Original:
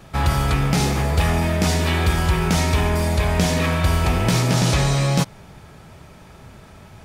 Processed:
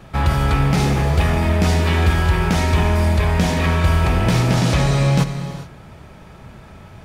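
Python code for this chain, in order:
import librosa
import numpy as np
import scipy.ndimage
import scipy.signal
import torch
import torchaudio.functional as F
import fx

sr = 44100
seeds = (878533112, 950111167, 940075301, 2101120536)

p1 = fx.bass_treble(x, sr, bass_db=1, treble_db=-6)
p2 = 10.0 ** (-21.0 / 20.0) * np.tanh(p1 / 10.0 ** (-21.0 / 20.0))
p3 = p1 + F.gain(torch.from_numpy(p2), -12.0).numpy()
y = fx.rev_gated(p3, sr, seeds[0], gate_ms=450, shape='flat', drr_db=8.5)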